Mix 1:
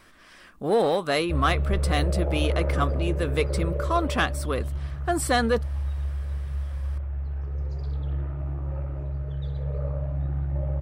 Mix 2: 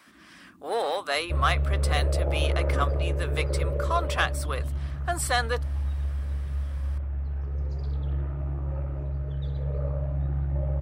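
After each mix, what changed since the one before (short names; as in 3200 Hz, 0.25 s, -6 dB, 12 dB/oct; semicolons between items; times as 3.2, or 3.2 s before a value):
speech: add HPF 690 Hz 12 dB/oct; first sound +9.5 dB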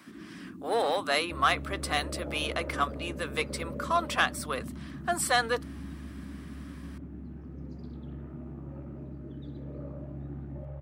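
first sound +11.5 dB; second sound -9.5 dB; master: add HPF 100 Hz 12 dB/oct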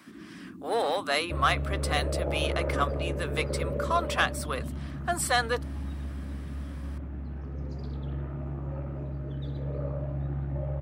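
second sound +9.0 dB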